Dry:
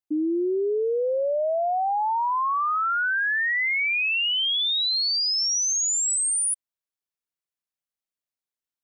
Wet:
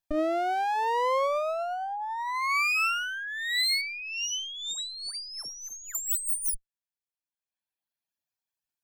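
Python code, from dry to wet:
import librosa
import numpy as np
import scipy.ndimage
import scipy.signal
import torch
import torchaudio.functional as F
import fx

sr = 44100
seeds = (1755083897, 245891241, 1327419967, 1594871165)

y = fx.lower_of_two(x, sr, delay_ms=1.2)
y = fx.dereverb_blind(y, sr, rt60_s=1.5)
y = fx.over_compress(y, sr, threshold_db=-30.0, ratio=-0.5)
y = fx.air_absorb(y, sr, metres=120.0, at=(3.81, 5.95))
y = y * 10.0 ** (2.0 / 20.0)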